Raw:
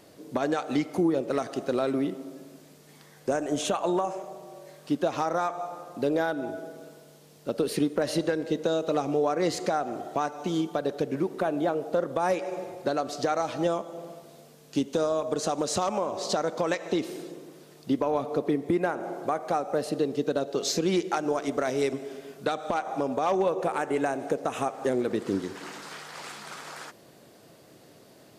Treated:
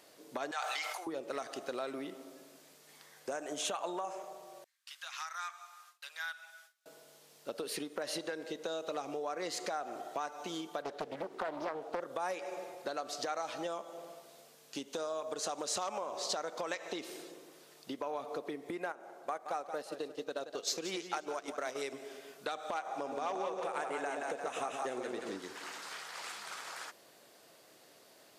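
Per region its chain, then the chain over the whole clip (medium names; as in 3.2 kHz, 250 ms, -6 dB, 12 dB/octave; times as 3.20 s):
0.51–1.07 s: high-pass 750 Hz 24 dB/octave + decay stretcher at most 21 dB/s
4.64–6.86 s: high-pass 1.4 kHz 24 dB/octave + gate with hold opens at -45 dBFS, closes at -48 dBFS
10.82–12.00 s: treble shelf 7.2 kHz -11 dB + loudspeaker Doppler distortion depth 0.87 ms
18.92–21.82 s: gate -30 dBFS, range -9 dB + peaking EQ 63 Hz -3.5 dB 2.9 oct + modulated delay 174 ms, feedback 33%, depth 97 cents, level -11.5 dB
22.87–25.37 s: peaking EQ 12 kHz -11 dB 0.24 oct + two-band feedback delay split 670 Hz, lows 125 ms, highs 175 ms, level -3.5 dB
whole clip: bass shelf 190 Hz -9 dB; compression 3:1, threshold -29 dBFS; bass shelf 420 Hz -12 dB; trim -2 dB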